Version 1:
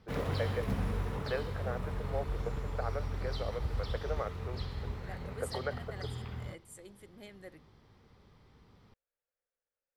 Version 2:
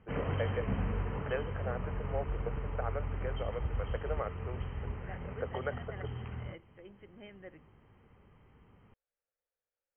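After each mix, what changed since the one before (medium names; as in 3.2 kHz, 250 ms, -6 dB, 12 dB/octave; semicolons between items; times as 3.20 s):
master: add brick-wall FIR low-pass 3.2 kHz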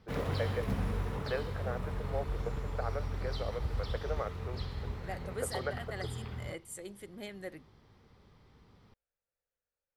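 second voice +7.0 dB; master: remove brick-wall FIR low-pass 3.2 kHz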